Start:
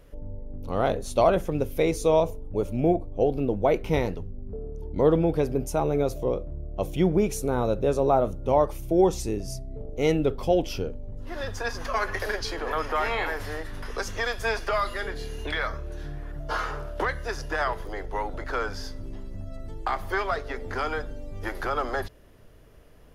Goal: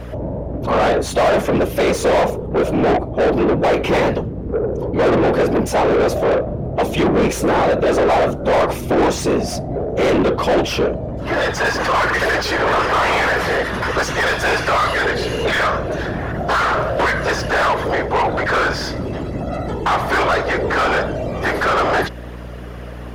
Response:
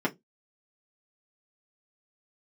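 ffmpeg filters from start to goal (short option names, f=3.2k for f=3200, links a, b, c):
-filter_complex "[0:a]afftfilt=real='hypot(re,im)*cos(2*PI*random(0))':imag='hypot(re,im)*sin(2*PI*random(1))':win_size=512:overlap=0.75,asplit=2[a][b];[b]highpass=f=720:p=1,volume=35dB,asoftclip=type=tanh:threshold=-11dB[c];[a][c]amix=inputs=2:normalize=0,lowpass=f=1.7k:p=1,volume=-6dB,aeval=exprs='val(0)+0.0178*(sin(2*PI*60*n/s)+sin(2*PI*2*60*n/s)/2+sin(2*PI*3*60*n/s)/3+sin(2*PI*4*60*n/s)/4+sin(2*PI*5*60*n/s)/5)':c=same,volume=4dB"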